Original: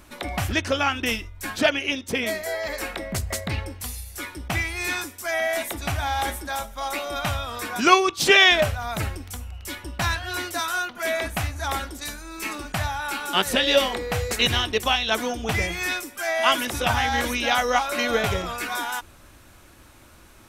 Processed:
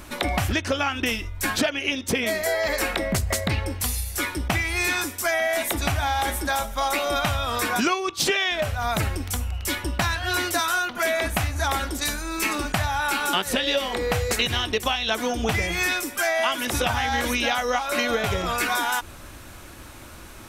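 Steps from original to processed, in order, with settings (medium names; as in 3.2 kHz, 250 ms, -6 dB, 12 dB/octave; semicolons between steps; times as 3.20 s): compression 10:1, threshold -28 dBFS, peak gain reduction 19 dB; trim +8 dB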